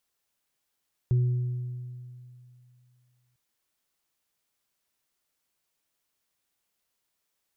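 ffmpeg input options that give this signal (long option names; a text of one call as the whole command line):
ffmpeg -f lavfi -i "aevalsrc='0.119*pow(10,-3*t/2.57)*sin(2*PI*124*t)+0.015*pow(10,-3*t/1.64)*sin(2*PI*367*t)':duration=2.25:sample_rate=44100" out.wav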